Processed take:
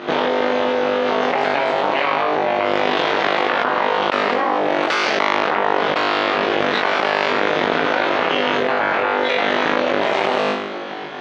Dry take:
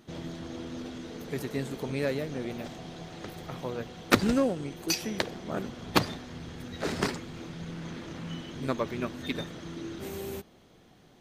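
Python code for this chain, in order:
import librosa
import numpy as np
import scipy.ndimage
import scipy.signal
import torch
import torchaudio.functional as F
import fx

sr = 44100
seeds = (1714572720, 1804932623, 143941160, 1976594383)

y = np.clip(10.0 ** (12.0 / 20.0) * x, -1.0, 1.0) / 10.0 ** (12.0 / 20.0)
y = fx.room_flutter(y, sr, wall_m=3.4, rt60_s=0.79)
y = fx.cheby_harmonics(y, sr, harmonics=(3, 5, 8), levels_db=(-10, -33, -17), full_scale_db=-6.0)
y = fx.bandpass_edges(y, sr, low_hz=480.0, high_hz=2900.0)
y = fx.air_absorb(y, sr, metres=120.0)
y = fx.env_flatten(y, sr, amount_pct=100)
y = F.gain(torch.from_numpy(y), 6.0).numpy()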